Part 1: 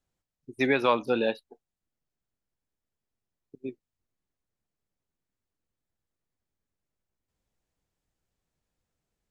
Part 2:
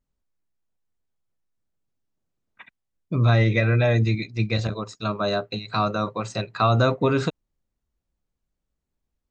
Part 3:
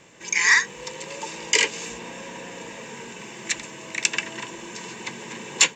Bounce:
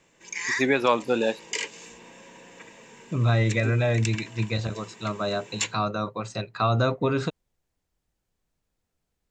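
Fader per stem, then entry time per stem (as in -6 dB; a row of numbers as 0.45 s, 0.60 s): +2.0 dB, -3.5 dB, -11.0 dB; 0.00 s, 0.00 s, 0.00 s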